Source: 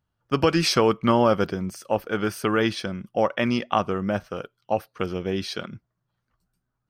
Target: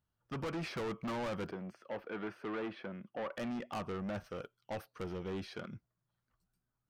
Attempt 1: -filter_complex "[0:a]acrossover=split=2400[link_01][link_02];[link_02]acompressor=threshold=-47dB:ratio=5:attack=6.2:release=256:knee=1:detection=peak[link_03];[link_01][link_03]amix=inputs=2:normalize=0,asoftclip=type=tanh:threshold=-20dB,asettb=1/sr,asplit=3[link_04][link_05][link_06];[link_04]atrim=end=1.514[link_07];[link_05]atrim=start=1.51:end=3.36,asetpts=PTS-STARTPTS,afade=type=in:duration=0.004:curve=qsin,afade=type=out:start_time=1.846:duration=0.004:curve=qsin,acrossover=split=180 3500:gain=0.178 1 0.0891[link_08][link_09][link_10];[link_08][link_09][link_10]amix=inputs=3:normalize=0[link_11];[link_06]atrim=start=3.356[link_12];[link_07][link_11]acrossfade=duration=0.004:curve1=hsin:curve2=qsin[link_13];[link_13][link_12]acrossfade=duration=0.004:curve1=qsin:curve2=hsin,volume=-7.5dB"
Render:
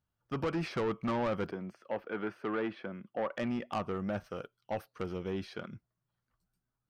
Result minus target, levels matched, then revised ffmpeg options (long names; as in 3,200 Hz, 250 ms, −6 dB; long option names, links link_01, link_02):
soft clipping: distortion −5 dB
-filter_complex "[0:a]acrossover=split=2400[link_01][link_02];[link_02]acompressor=threshold=-47dB:ratio=5:attack=6.2:release=256:knee=1:detection=peak[link_03];[link_01][link_03]amix=inputs=2:normalize=0,asoftclip=type=tanh:threshold=-28dB,asettb=1/sr,asplit=3[link_04][link_05][link_06];[link_04]atrim=end=1.514[link_07];[link_05]atrim=start=1.51:end=3.36,asetpts=PTS-STARTPTS,afade=type=in:duration=0.004:curve=qsin,afade=type=out:start_time=1.846:duration=0.004:curve=qsin,acrossover=split=180 3500:gain=0.178 1 0.0891[link_08][link_09][link_10];[link_08][link_09][link_10]amix=inputs=3:normalize=0[link_11];[link_06]atrim=start=3.356[link_12];[link_07][link_11]acrossfade=duration=0.004:curve1=hsin:curve2=qsin[link_13];[link_13][link_12]acrossfade=duration=0.004:curve1=qsin:curve2=hsin,volume=-7.5dB"